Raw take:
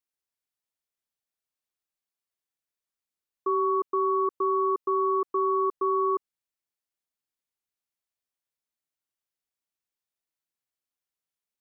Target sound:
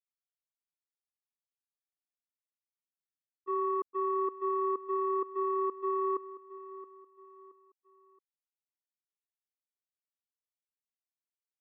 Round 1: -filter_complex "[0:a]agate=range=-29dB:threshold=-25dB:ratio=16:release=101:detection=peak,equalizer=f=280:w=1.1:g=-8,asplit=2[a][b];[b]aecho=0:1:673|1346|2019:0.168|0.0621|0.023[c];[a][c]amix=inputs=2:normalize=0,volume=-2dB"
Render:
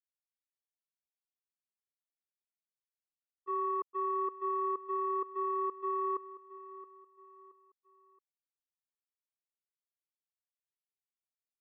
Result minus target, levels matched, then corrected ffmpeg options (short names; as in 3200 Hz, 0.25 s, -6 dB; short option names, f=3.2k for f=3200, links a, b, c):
250 Hz band -3.0 dB
-filter_complex "[0:a]agate=range=-29dB:threshold=-25dB:ratio=16:release=101:detection=peak,asplit=2[a][b];[b]aecho=0:1:673|1346|2019:0.168|0.0621|0.023[c];[a][c]amix=inputs=2:normalize=0,volume=-2dB"